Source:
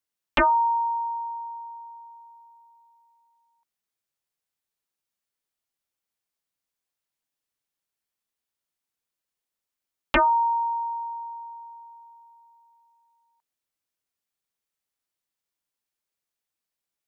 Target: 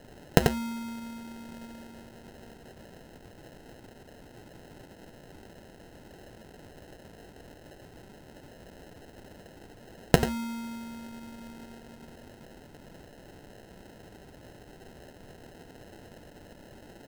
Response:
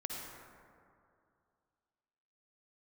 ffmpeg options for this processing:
-filter_complex "[0:a]highpass=660,aecho=1:1:6.6:0.45,aecho=1:1:89:0.562,asplit=2[s0][s1];[s1]acompressor=threshold=0.0316:ratio=6,volume=0.841[s2];[s0][s2]amix=inputs=2:normalize=0,aexciter=amount=15.7:drive=5.8:freq=3500,adynamicequalizer=threshold=0.0316:dfrequency=990:dqfactor=5.1:tfrequency=990:tqfactor=5.1:attack=5:release=100:ratio=0.375:range=2.5:mode=cutabove:tftype=bell,crystalizer=i=6.5:c=0,acrusher=samples=38:mix=1:aa=0.000001,volume=0.126"

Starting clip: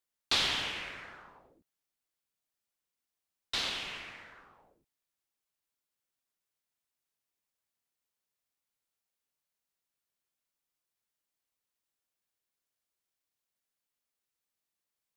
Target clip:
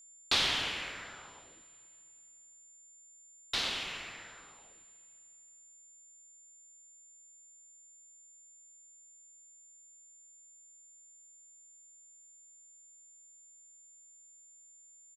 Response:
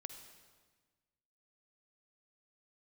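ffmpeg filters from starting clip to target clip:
-filter_complex "[0:a]aeval=exprs='val(0)+0.00178*sin(2*PI*7200*n/s)':c=same,asplit=5[s0][s1][s2][s3][s4];[s1]adelay=120,afreqshift=78,volume=0.119[s5];[s2]adelay=240,afreqshift=156,volume=0.0582[s6];[s3]adelay=360,afreqshift=234,volume=0.0285[s7];[s4]adelay=480,afreqshift=312,volume=0.014[s8];[s0][s5][s6][s7][s8]amix=inputs=5:normalize=0,asplit=2[s9][s10];[1:a]atrim=start_sample=2205,asetrate=22932,aresample=44100[s11];[s10][s11]afir=irnorm=-1:irlink=0,volume=0.398[s12];[s9][s12]amix=inputs=2:normalize=0,volume=0.794"

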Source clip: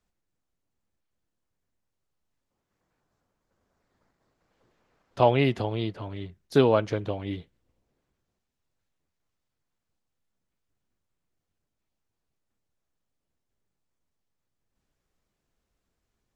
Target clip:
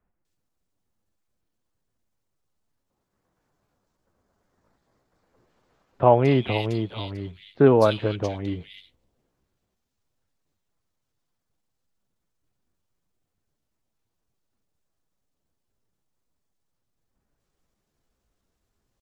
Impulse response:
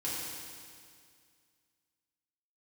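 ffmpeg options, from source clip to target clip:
-filter_complex "[0:a]atempo=0.86,acrossover=split=2200[s0][s1];[s1]adelay=250[s2];[s0][s2]amix=inputs=2:normalize=0,volume=1.5"

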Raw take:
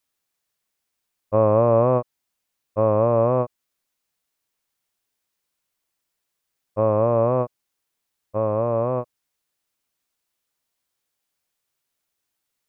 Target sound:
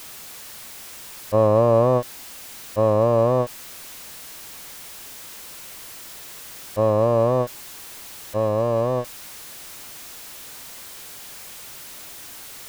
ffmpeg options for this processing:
-af "aeval=exprs='val(0)+0.5*0.0224*sgn(val(0))':c=same"

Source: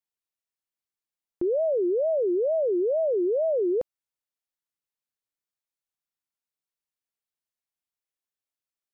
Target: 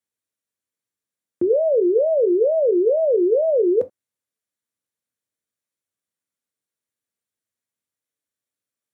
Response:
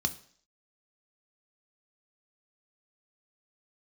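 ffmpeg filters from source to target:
-filter_complex "[1:a]atrim=start_sample=2205,afade=t=out:st=0.18:d=0.01,atrim=end_sample=8379,asetrate=70560,aresample=44100[s0];[0:a][s0]afir=irnorm=-1:irlink=0,volume=1.19"

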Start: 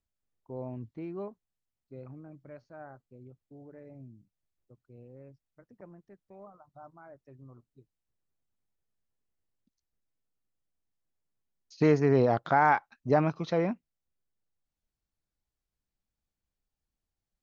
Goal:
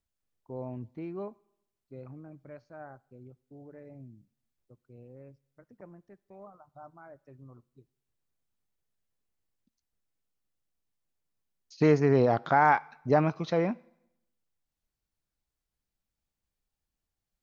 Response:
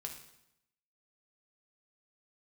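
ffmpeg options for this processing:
-filter_complex "[0:a]asplit=2[s0][s1];[1:a]atrim=start_sample=2205,lowshelf=f=360:g=-11.5[s2];[s1][s2]afir=irnorm=-1:irlink=0,volume=0.266[s3];[s0][s3]amix=inputs=2:normalize=0"

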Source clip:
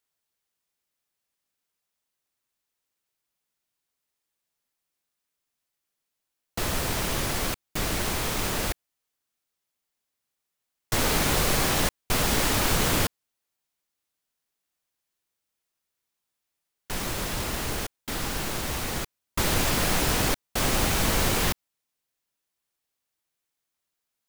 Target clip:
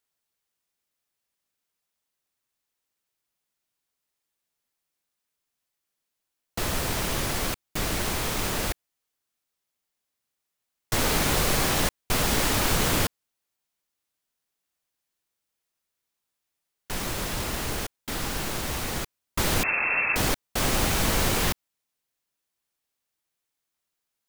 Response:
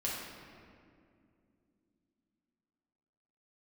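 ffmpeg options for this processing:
-filter_complex "[0:a]asettb=1/sr,asplit=3[s0][s1][s2];[s0]atrim=end=19.634[s3];[s1]atrim=start=19.63:end=20.16,asetpts=PTS-STARTPTS,afade=t=in:d=0.004:c=qsin,afade=t=out:st=0.526:d=0.004:c=qsin,lowpass=f=2300:t=q:w=0.5098,lowpass=f=2300:t=q:w=0.6013,lowpass=f=2300:t=q:w=0.9,lowpass=f=2300:t=q:w=2.563,afreqshift=-2700[s4];[s2]atrim=start=20.156[s5];[s3][s4]acrossfade=d=0.004:c1=hsin:c2=qsin[s6];[s6][s5]acrossfade=d=0.004:c1=qsin:c2=hsin"

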